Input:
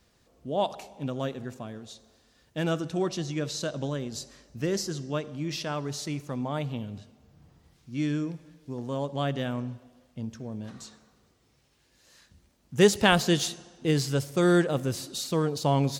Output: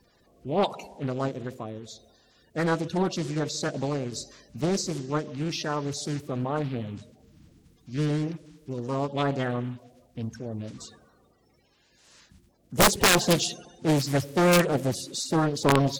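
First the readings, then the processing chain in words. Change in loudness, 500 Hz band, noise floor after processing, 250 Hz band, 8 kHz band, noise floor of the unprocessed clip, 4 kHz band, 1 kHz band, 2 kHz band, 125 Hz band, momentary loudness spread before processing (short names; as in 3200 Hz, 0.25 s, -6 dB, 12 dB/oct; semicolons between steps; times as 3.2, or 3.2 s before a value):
+2.0 dB, +1.0 dB, -64 dBFS, +1.0 dB, +5.5 dB, -66 dBFS, +2.5 dB, +3.5 dB, +3.0 dB, +1.5 dB, 19 LU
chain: bin magnitudes rounded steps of 30 dB; wrapped overs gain 13.5 dB; Doppler distortion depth 0.9 ms; gain +3 dB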